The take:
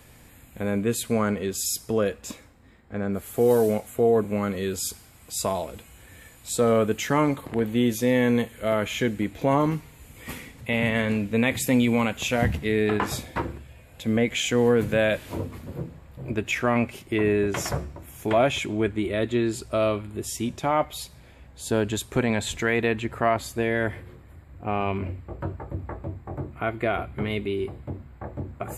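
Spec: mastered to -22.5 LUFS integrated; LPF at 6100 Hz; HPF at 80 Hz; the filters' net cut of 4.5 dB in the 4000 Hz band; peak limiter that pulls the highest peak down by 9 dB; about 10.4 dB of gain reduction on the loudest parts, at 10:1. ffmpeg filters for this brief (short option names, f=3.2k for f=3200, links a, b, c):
-af "highpass=80,lowpass=6.1k,equalizer=f=4k:t=o:g=-5.5,acompressor=threshold=-26dB:ratio=10,volume=12dB,alimiter=limit=-10.5dB:level=0:latency=1"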